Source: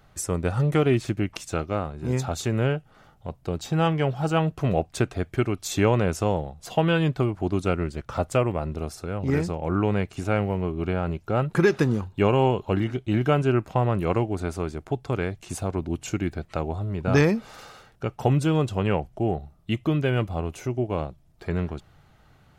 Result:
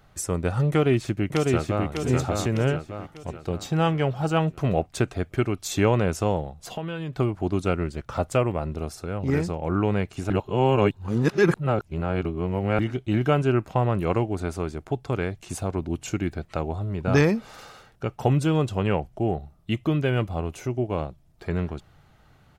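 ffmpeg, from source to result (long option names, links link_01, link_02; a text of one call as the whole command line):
ffmpeg -i in.wav -filter_complex "[0:a]asplit=2[link_01][link_02];[link_02]afade=type=in:start_time=0.7:duration=0.01,afade=type=out:start_time=1.86:duration=0.01,aecho=0:1:600|1200|1800|2400|3000|3600:0.749894|0.337452|0.151854|0.0683341|0.0307503|0.0138377[link_03];[link_01][link_03]amix=inputs=2:normalize=0,asettb=1/sr,asplit=3[link_04][link_05][link_06];[link_04]atrim=end=6.604[link_07];[link_05]atrim=start=6.6:end=7.13,asetpts=PTS-STARTPTS,afade=type=in:duration=0.004:curve=qsin,afade=type=out:start_time=0.526:duration=0.004:curve=qsin,acompressor=threshold=-29dB:ratio=4:attack=3.2:release=140:knee=1:detection=peak[link_08];[link_06]atrim=start=7.126[link_09];[link_07][link_08]acrossfade=duration=0.004:curve1=hsin:curve2=qsin[link_10];[link_10][link_09]acrossfade=duration=0.004:curve1=qsin:curve2=hsin,asplit=3[link_11][link_12][link_13];[link_11]atrim=end=10.302[link_14];[link_12]atrim=start=10.298:end=12.792,asetpts=PTS-STARTPTS,areverse[link_15];[link_13]atrim=start=12.788[link_16];[link_14][link_15]acrossfade=duration=0.004:curve1=hsin:curve2=hsin[link_17];[link_17][link_16]acrossfade=duration=0.004:curve1=hsin:curve2=hsin" out.wav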